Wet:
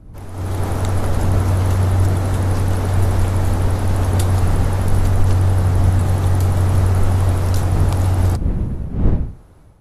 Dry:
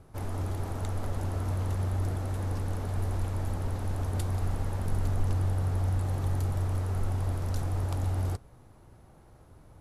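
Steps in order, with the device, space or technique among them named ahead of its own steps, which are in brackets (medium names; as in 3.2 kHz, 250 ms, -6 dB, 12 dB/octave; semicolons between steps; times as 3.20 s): smartphone video outdoors (wind noise 110 Hz; level rider gain up to 16 dB; trim -1 dB; AAC 48 kbps 32 kHz)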